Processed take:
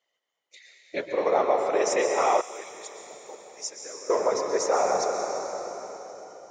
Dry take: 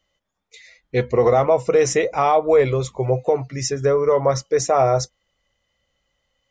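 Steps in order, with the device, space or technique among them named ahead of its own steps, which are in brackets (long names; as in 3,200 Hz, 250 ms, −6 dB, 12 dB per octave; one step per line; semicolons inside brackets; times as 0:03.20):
whispering ghost (random phases in short frames; high-pass filter 450 Hz 12 dB per octave; convolution reverb RT60 4.0 s, pre-delay 111 ms, DRR 1.5 dB)
0:02.41–0:04.10: first-order pre-emphasis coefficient 0.9
level −6 dB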